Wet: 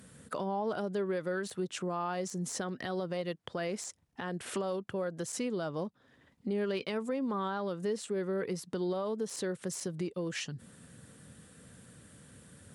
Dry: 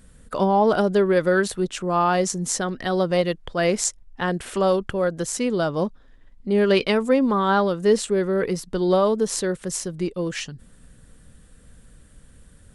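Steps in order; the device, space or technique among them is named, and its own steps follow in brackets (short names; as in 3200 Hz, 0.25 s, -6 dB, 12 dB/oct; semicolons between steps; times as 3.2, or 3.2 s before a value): podcast mastering chain (HPF 98 Hz 24 dB/oct; de-esser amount 50%; compressor 3:1, threshold -36 dBFS, peak gain reduction 17 dB; limiter -26 dBFS, peak gain reduction 7 dB; gain +1 dB; MP3 128 kbps 48000 Hz)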